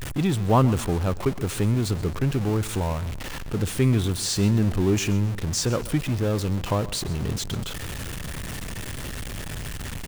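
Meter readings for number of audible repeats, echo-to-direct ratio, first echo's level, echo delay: 2, -17.0 dB, -17.5 dB, 129 ms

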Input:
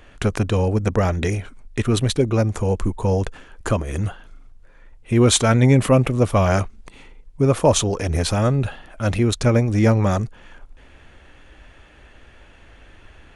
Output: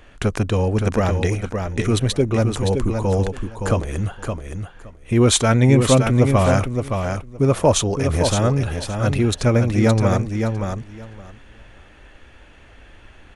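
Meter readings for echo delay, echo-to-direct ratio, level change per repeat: 568 ms, -6.0 dB, -16.0 dB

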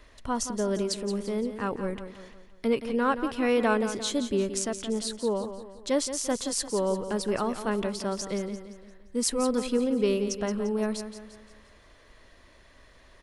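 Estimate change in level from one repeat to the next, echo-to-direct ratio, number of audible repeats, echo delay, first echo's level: -7.0 dB, -9.5 dB, 4, 173 ms, -10.5 dB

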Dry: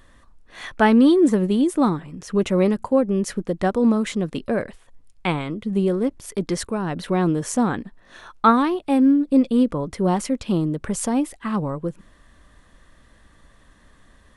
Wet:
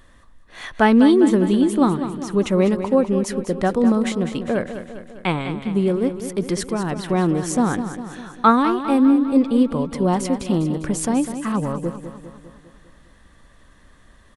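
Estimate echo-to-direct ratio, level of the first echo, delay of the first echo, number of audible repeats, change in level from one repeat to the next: -9.0 dB, -10.5 dB, 201 ms, 6, -5.0 dB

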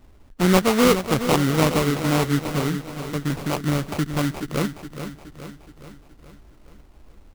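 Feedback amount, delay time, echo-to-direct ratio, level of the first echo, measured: 54%, 421 ms, -8.5 dB, -10.0 dB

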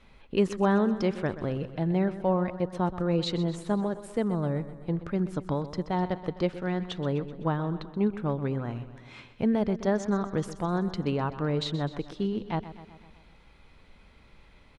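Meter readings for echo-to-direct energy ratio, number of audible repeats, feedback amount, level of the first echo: -12.0 dB, 5, 59%, -14.0 dB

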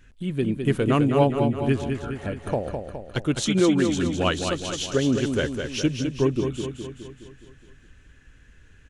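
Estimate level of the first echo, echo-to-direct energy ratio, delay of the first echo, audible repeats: -6.0 dB, -4.5 dB, 208 ms, 6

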